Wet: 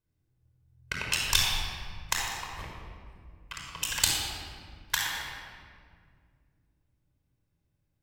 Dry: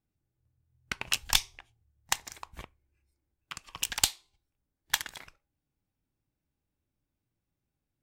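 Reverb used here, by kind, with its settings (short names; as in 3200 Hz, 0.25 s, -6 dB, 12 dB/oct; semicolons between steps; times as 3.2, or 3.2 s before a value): shoebox room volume 3700 m³, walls mixed, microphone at 5.1 m; gain -3 dB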